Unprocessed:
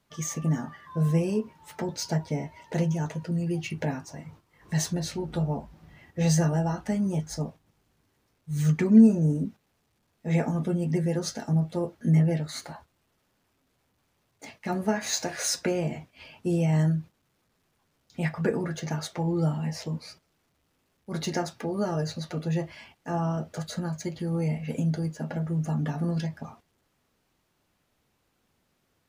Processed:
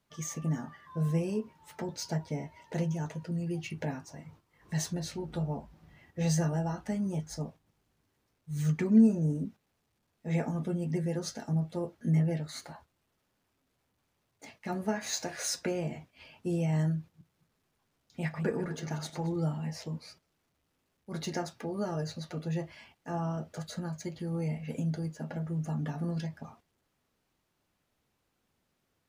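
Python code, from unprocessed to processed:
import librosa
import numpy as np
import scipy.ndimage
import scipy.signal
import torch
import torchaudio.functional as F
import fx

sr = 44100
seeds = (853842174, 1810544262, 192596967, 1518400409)

y = fx.reverse_delay_fb(x, sr, ms=111, feedback_pct=41, wet_db=-11.5, at=(16.99, 19.36))
y = F.gain(torch.from_numpy(y), -5.5).numpy()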